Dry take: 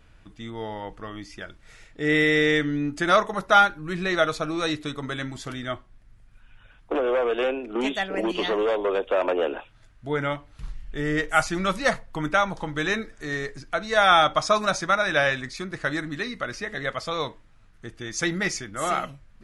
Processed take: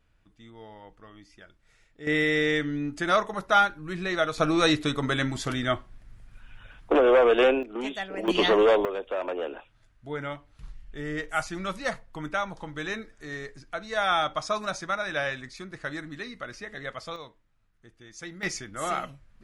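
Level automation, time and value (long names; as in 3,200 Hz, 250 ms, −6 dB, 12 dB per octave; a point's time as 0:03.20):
−13 dB
from 0:02.07 −4 dB
from 0:04.38 +4.5 dB
from 0:07.63 −6.5 dB
from 0:08.28 +4 dB
from 0:08.85 −7.5 dB
from 0:17.16 −15 dB
from 0:18.43 −4 dB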